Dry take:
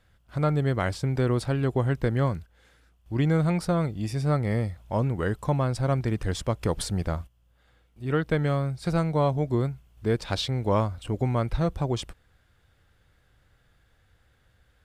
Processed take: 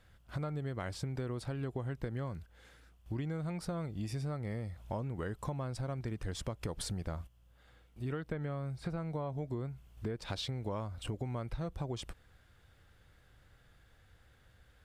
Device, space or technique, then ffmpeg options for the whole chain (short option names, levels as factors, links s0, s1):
serial compression, peaks first: -filter_complex "[0:a]asettb=1/sr,asplit=3[s0][s1][s2];[s0]atrim=end=8.294[s3];[s1]atrim=start=8.29:end=10.17,asetpts=PTS-STARTPTS,afade=t=in:d=0.004:c=qsin,afade=t=out:st=1.876:d=0.004:c=qsin,acrossover=split=2700[s4][s5];[s5]acompressor=threshold=0.002:ratio=4:attack=1:release=60[s6];[s4][s6]amix=inputs=2:normalize=0[s7];[s2]atrim=start=10.166[s8];[s3][s7]acrossfade=d=0.004:c1=hsin:c2=qsin[s9];[s9][s8]acrossfade=d=0.004:c1=qsin:c2=hsin,acompressor=threshold=0.0251:ratio=6,acompressor=threshold=0.0112:ratio=1.5"